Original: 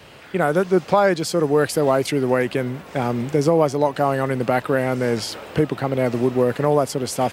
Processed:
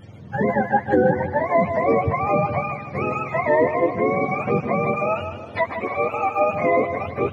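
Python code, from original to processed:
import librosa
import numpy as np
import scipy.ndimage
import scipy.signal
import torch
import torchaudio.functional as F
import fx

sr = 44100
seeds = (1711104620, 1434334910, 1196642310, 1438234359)

y = fx.octave_mirror(x, sr, pivot_hz=550.0)
y = fx.peak_eq(y, sr, hz=150.0, db=-14.5, octaves=0.69, at=(4.96, 6.53))
y = fx.echo_feedback(y, sr, ms=154, feedback_pct=39, wet_db=-9)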